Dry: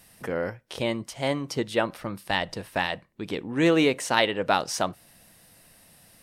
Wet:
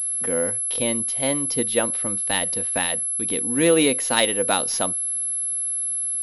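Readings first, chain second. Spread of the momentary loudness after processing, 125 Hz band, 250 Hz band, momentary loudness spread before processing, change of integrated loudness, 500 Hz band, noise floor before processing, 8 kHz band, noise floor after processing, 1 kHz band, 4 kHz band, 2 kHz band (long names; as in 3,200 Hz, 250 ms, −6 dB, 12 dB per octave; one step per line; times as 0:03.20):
5 LU, −1.0 dB, +2.0 dB, 11 LU, +6.0 dB, +3.0 dB, −56 dBFS, +20.5 dB, −26 dBFS, −0.5 dB, +4.0 dB, +1.0 dB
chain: high-shelf EQ 3,500 Hz +12 dB
hollow resonant body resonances 250/490/3,800 Hz, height 8 dB, ringing for 40 ms
switching amplifier with a slow clock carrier 11,000 Hz
level −2 dB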